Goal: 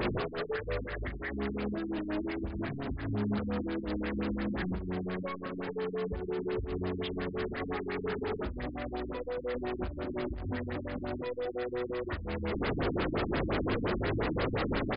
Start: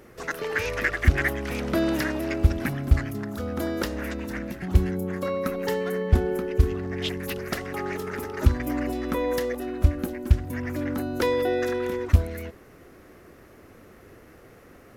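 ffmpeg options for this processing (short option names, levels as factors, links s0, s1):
-af "aeval=exprs='val(0)+0.5*0.0841*sgn(val(0))':c=same,acompressor=threshold=0.0631:ratio=6,alimiter=level_in=1.26:limit=0.0631:level=0:latency=1:release=169,volume=0.794,aecho=1:1:19|39:0.355|0.501,afftfilt=real='re*lt(b*sr/1024,300*pow(5200/300,0.5+0.5*sin(2*PI*5.7*pts/sr)))':imag='im*lt(b*sr/1024,300*pow(5200/300,0.5+0.5*sin(2*PI*5.7*pts/sr)))':win_size=1024:overlap=0.75,volume=0.668"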